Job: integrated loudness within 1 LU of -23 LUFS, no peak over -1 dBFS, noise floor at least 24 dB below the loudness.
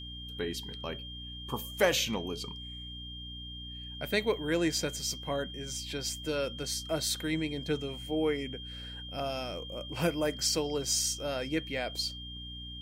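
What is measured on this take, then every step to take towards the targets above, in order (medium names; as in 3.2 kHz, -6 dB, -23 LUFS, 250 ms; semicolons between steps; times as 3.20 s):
hum 60 Hz; highest harmonic 300 Hz; hum level -43 dBFS; steady tone 3.2 kHz; tone level -43 dBFS; loudness -33.0 LUFS; peak level -14.0 dBFS; loudness target -23.0 LUFS
-> de-hum 60 Hz, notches 5; band-stop 3.2 kHz, Q 30; trim +10 dB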